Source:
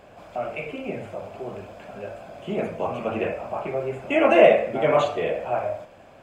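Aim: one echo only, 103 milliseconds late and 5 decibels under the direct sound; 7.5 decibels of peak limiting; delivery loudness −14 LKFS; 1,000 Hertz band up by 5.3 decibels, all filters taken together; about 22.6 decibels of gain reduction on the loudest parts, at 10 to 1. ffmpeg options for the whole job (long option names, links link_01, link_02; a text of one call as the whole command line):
ffmpeg -i in.wav -af "equalizer=frequency=1000:width_type=o:gain=8,acompressor=threshold=-30dB:ratio=10,alimiter=level_in=3dB:limit=-24dB:level=0:latency=1,volume=-3dB,aecho=1:1:103:0.562,volume=21.5dB" out.wav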